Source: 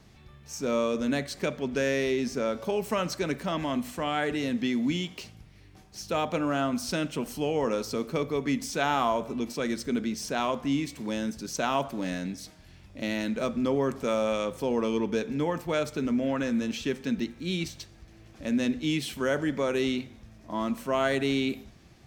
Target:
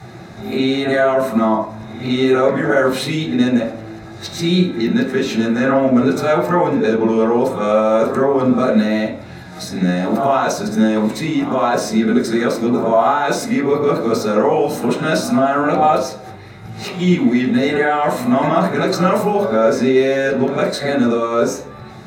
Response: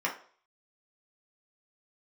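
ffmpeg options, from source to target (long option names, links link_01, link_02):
-filter_complex "[0:a]areverse,asplit=2[link_01][link_02];[link_02]acompressor=threshold=-39dB:ratio=6,volume=-1dB[link_03];[link_01][link_03]amix=inputs=2:normalize=0,alimiter=limit=-22dB:level=0:latency=1:release=22[link_04];[1:a]atrim=start_sample=2205,asetrate=30870,aresample=44100[link_05];[link_04][link_05]afir=irnorm=-1:irlink=0,volume=6dB"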